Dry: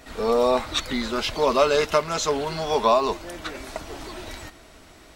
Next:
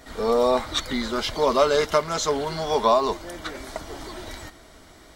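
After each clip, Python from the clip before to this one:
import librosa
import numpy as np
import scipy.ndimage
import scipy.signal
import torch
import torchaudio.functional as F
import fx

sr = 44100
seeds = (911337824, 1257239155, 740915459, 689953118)

y = fx.notch(x, sr, hz=2600.0, q=6.3)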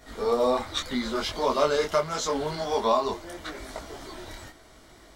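y = fx.detune_double(x, sr, cents=28)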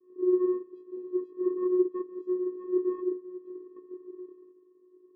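y = scipy.signal.sosfilt(scipy.signal.ellip(3, 1.0, 40, [220.0, 670.0], 'bandpass', fs=sr, output='sos'), x)
y = fx.vocoder(y, sr, bands=8, carrier='square', carrier_hz=364.0)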